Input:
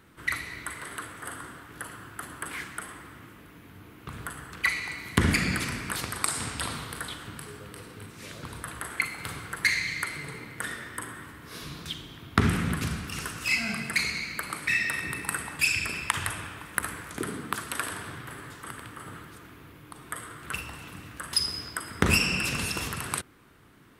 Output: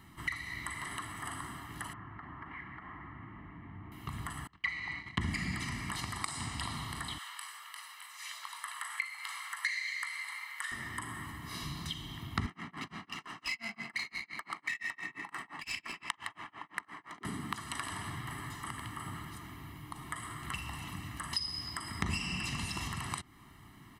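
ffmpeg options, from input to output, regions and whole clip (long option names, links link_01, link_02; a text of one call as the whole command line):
ffmpeg -i in.wav -filter_complex "[0:a]asettb=1/sr,asplit=3[link_01][link_02][link_03];[link_01]atrim=end=1.934[link_04];[link_02]atrim=start=1.93:end=3.92,asetpts=PTS-STARTPTS,afade=type=in:duration=0.004:curve=qsin,afade=type=out:start_time=1.986:duration=0.004:curve=qsin,lowpass=frequency=2100:width=0.5412,lowpass=frequency=2100:width=1.3066,acompressor=threshold=-45dB:ratio=3:attack=3.2:release=140:knee=1:detection=peak[link_05];[link_03]atrim=start=3.916[link_06];[link_04][link_05]acrossfade=duration=0.004:curve1=hsin:curve2=qsin[link_07];[link_07][link_06]acrossfade=duration=0.004:curve1=qsin:curve2=hsin,asettb=1/sr,asplit=3[link_08][link_09][link_10];[link_08]atrim=end=4.474[link_11];[link_09]atrim=start=4.47:end=5.21,asetpts=PTS-STARTPTS,afade=type=in:duration=0.004:curve=qsin,afade=type=out:start_time=0.736:duration=0.004:curve=qsin,agate=range=-28dB:threshold=-40dB:ratio=16:release=100:detection=peak,lowpass=3700[link_12];[link_10]atrim=start=5.206[link_13];[link_11][link_12]acrossfade=duration=0.004:curve1=hsin:curve2=qsin[link_14];[link_14][link_13]acrossfade=duration=0.004:curve1=qsin:curve2=hsin,asettb=1/sr,asplit=3[link_15][link_16][link_17];[link_15]atrim=end=7.184[link_18];[link_16]atrim=start=7.18:end=10.72,asetpts=PTS-STARTPTS,afade=type=in:duration=0.004:curve=qsin,afade=type=out:start_time=3.536:duration=0.004:curve=qsin,highpass=frequency=1000:width=0.5412,highpass=frequency=1000:width=1.3066,asplit=2[link_19][link_20];[link_20]adelay=20,volume=-12dB[link_21];[link_19][link_21]amix=inputs=2:normalize=0,atrim=end_sample=156114[link_22];[link_17]atrim=start=10.716[link_23];[link_18][link_22]acrossfade=duration=0.004:curve1=hsin:curve2=qsin[link_24];[link_24][link_23]acrossfade=duration=0.004:curve1=qsin:curve2=hsin,asettb=1/sr,asplit=3[link_25][link_26][link_27];[link_25]atrim=end=12.464[link_28];[link_26]atrim=start=12.46:end=17.25,asetpts=PTS-STARTPTS,afade=type=in:duration=0.004:curve=qsin,afade=type=out:start_time=4.786:duration=0.004:curve=qsin,highpass=340,tremolo=f=5.8:d=0.98,adynamicsmooth=sensitivity=5.5:basefreq=2200[link_29];[link_27]atrim=start=17.246[link_30];[link_28][link_29]acrossfade=duration=0.004:curve1=hsin:curve2=qsin[link_31];[link_31][link_30]acrossfade=duration=0.004:curve1=qsin:curve2=hsin,acrossover=split=9000[link_32][link_33];[link_33]acompressor=threshold=-53dB:ratio=4:attack=1:release=60[link_34];[link_32][link_34]amix=inputs=2:normalize=0,aecho=1:1:1:0.88,acompressor=threshold=-36dB:ratio=2.5,volume=-1.5dB" out.wav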